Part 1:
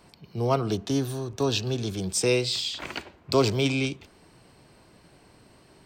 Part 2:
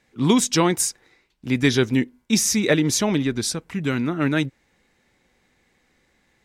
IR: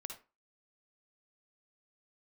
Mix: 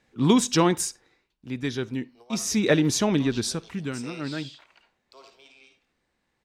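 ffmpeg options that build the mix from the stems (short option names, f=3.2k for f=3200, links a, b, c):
-filter_complex "[0:a]highpass=700,adelay=1800,volume=-15dB,asplit=2[a][b];[b]volume=-4.5dB[c];[1:a]equalizer=f=2.1k:t=o:w=0.23:g=-5,volume=6.5dB,afade=t=out:st=0.71:d=0.76:silence=0.354813,afade=t=in:st=2.33:d=0.27:silence=0.354813,afade=t=out:st=3.56:d=0.42:silence=0.334965,asplit=3[d][e][f];[e]volume=-12dB[g];[f]apad=whole_len=337559[h];[a][h]sidechaingate=range=-33dB:threshold=-55dB:ratio=16:detection=peak[i];[2:a]atrim=start_sample=2205[j];[c][g]amix=inputs=2:normalize=0[k];[k][j]afir=irnorm=-1:irlink=0[l];[i][d][l]amix=inputs=3:normalize=0,highshelf=f=7.9k:g=-8"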